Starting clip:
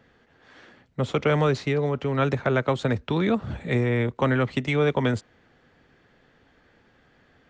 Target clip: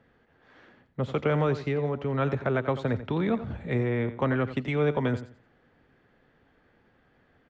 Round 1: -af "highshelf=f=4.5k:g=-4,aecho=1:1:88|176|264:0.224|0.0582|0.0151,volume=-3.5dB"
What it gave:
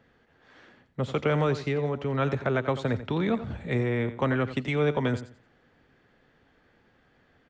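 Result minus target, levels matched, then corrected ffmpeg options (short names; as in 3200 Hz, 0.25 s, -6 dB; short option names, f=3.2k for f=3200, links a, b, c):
8000 Hz band +7.0 dB
-af "highshelf=f=4.5k:g=-15,aecho=1:1:88|176|264:0.224|0.0582|0.0151,volume=-3.5dB"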